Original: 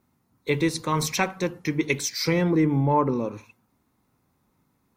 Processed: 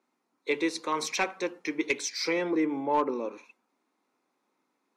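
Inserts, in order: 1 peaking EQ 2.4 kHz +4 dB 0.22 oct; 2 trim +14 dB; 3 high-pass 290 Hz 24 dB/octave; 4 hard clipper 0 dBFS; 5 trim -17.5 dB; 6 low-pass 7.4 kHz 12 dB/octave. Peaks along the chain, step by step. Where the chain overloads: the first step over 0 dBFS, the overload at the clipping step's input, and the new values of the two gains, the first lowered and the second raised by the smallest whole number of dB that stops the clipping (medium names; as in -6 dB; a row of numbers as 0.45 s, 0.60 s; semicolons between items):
-7.0 dBFS, +7.0 dBFS, +5.5 dBFS, 0.0 dBFS, -17.5 dBFS, -17.0 dBFS; step 2, 5.5 dB; step 2 +8 dB, step 5 -11.5 dB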